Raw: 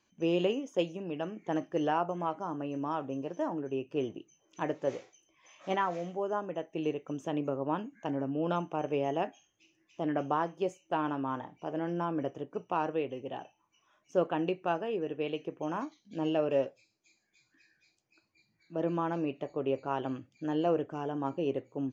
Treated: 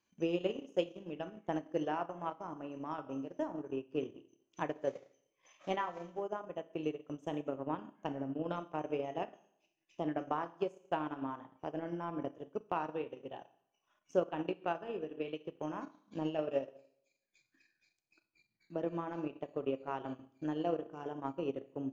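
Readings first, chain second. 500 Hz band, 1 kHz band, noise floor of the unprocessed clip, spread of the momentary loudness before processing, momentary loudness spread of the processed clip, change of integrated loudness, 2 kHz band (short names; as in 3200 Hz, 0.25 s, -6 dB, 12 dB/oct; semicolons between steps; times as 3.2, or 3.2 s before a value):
-5.5 dB, -6.0 dB, -75 dBFS, 8 LU, 8 LU, -5.5 dB, -5.5 dB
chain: Schroeder reverb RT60 0.73 s, combs from 26 ms, DRR 6 dB; transient shaper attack +7 dB, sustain -10 dB; gain -8.5 dB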